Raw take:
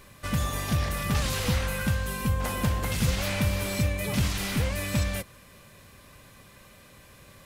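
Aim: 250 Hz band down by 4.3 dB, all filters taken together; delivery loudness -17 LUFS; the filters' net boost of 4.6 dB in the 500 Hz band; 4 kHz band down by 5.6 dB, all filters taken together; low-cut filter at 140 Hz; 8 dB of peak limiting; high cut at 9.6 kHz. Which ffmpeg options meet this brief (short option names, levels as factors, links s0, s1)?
-af "highpass=140,lowpass=9600,equalizer=f=250:t=o:g=-6,equalizer=f=500:t=o:g=6.5,equalizer=f=4000:t=o:g=-7.5,volume=6.31,alimiter=limit=0.398:level=0:latency=1"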